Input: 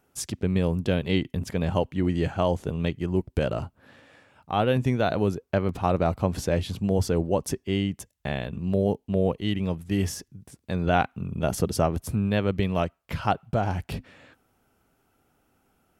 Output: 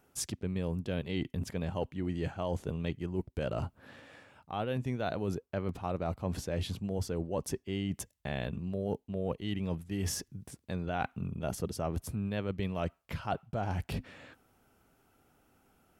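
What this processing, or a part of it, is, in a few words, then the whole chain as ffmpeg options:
compression on the reversed sound: -af "areverse,acompressor=threshold=0.0282:ratio=6,areverse"

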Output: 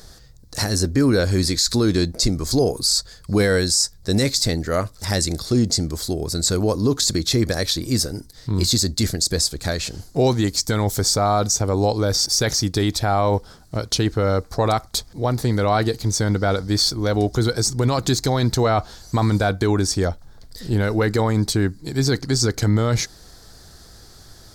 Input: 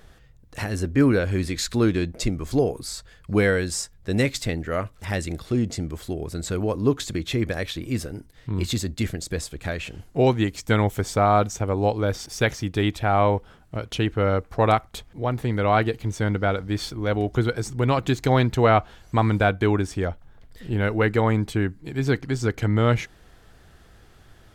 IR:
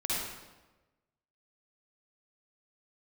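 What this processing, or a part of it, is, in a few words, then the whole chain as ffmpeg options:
over-bright horn tweeter: -af "highshelf=f=3600:t=q:w=3:g=8.5,alimiter=limit=0.2:level=0:latency=1:release=17,volume=1.78"

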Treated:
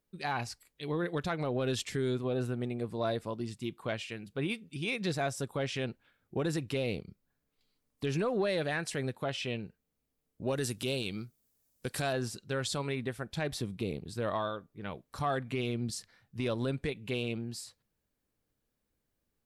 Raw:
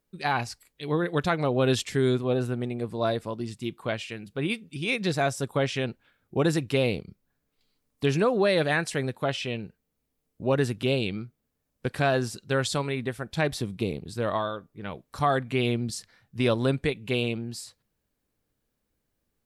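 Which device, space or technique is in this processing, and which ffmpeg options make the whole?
soft clipper into limiter: -filter_complex "[0:a]asettb=1/sr,asplit=3[s0][s1][s2];[s0]atrim=end=10.474[s3];[s1]atrim=start=10.47:end=12.13,asetpts=PTS-STARTPTS,afade=t=in:d=0.004:c=qsin,afade=t=out:st=1.656:d=0.004:c=qsin,bass=f=250:g=-1,treble=f=4000:g=14[s4];[s2]atrim=start=12.126[s5];[s3][s4]acrossfade=d=0.004:c1=hsin:c2=qsin[s6];[s6][s5]acrossfade=d=0.004:c1=qsin:c2=hsin,asoftclip=type=tanh:threshold=0.266,alimiter=limit=0.112:level=0:latency=1:release=105,volume=0.631"

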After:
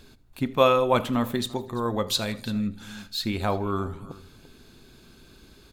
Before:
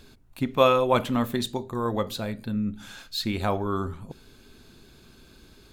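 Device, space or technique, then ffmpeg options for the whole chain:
ducked delay: -filter_complex "[0:a]asettb=1/sr,asplit=3[s0][s1][s2];[s0]atrim=end=2.084[s3];[s1]atrim=start=2.08:end=2.68,asetpts=PTS-STARTPTS,afade=t=in:d=0.004:c=qsin,afade=t=out:st=0.596:d=0.004:c=qsin,equalizer=f=5700:w=0.37:g=11.5[s4];[s2]atrim=start=2.676[s5];[s3][s4]acrossfade=d=0.004:c1=hsin:c2=qsin[s6];[s6][s5]acrossfade=d=0.004:c1=qsin:c2=hsin,aecho=1:1:80|160|240:0.0891|0.0419|0.0197,asplit=3[s7][s8][s9];[s8]adelay=341,volume=0.355[s10];[s9]apad=whole_len=278207[s11];[s10][s11]sidechaincompress=threshold=0.02:ratio=8:attack=5.6:release=1030[s12];[s7][s12]amix=inputs=2:normalize=0"

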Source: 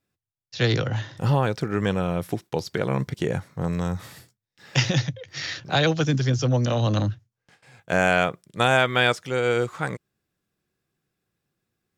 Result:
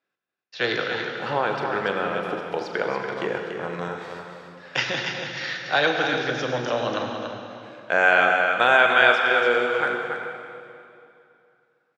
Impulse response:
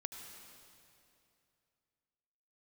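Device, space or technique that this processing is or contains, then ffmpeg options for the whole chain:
station announcement: -filter_complex "[0:a]highpass=420,lowpass=3600,equalizer=f=1500:t=o:w=0.33:g=5,aecho=1:1:40.82|285.7:0.282|0.447[s0];[1:a]atrim=start_sample=2205[s1];[s0][s1]afir=irnorm=-1:irlink=0,volume=1.68"

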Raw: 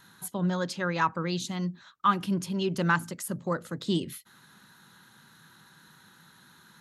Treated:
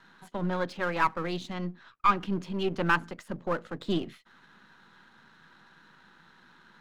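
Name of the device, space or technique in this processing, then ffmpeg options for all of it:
crystal radio: -filter_complex "[0:a]highpass=210,lowpass=2800,aeval=exprs='if(lt(val(0),0),0.447*val(0),val(0))':c=same,asettb=1/sr,asplit=3[s0][s1][s2];[s0]atrim=end=1.534[s3];[s1]atrim=start=1.53:end=2.16,asetpts=PTS-STARTPTS,afade=t=in:d=0.004:c=qsin,afade=t=out:st=0.626:d=0.004:c=qsin,lowpass=6600[s4];[s2]atrim=start=2.156[s5];[s3][s4]acrossfade=d=0.004:c1=hsin:c2=qsin[s6];[s6][s5]acrossfade=d=0.004:c1=qsin:c2=hsin,volume=1.5"

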